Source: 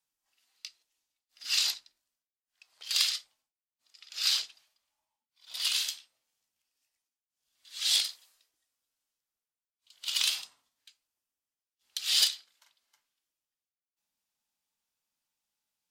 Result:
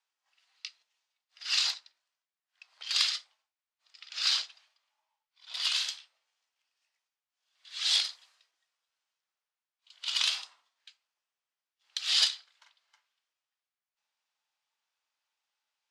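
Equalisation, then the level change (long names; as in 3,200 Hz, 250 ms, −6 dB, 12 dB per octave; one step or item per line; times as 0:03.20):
high-shelf EQ 3,800 Hz −8 dB
dynamic equaliser 2,600 Hz, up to −4 dB, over −44 dBFS, Q 0.92
band-pass filter 790–6,000 Hz
+7.5 dB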